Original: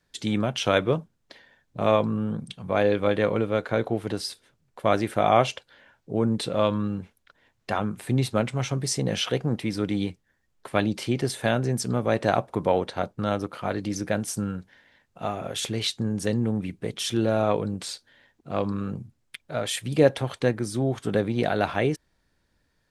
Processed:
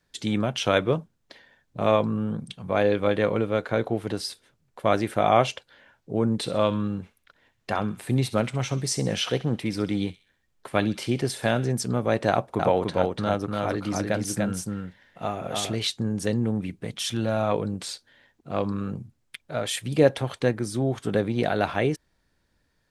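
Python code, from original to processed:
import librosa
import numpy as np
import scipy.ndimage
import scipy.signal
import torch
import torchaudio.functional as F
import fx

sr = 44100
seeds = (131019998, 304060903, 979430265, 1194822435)

y = fx.echo_wet_highpass(x, sr, ms=65, feedback_pct=44, hz=1900.0, wet_db=-13.5, at=(6.44, 11.71), fade=0.02)
y = fx.echo_single(y, sr, ms=292, db=-3.0, at=(12.3, 15.75))
y = fx.peak_eq(y, sr, hz=390.0, db=-10.5, octaves=0.58, at=(16.84, 17.52))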